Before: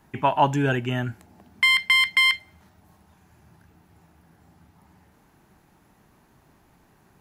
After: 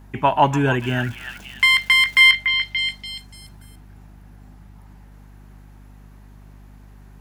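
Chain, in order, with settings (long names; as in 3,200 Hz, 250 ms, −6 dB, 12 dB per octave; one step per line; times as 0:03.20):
0:00.79–0:02.20: surface crackle 460 per second −37 dBFS
mains hum 50 Hz, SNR 21 dB
echo through a band-pass that steps 289 ms, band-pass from 1,700 Hz, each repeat 0.7 octaves, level −4 dB
level +3.5 dB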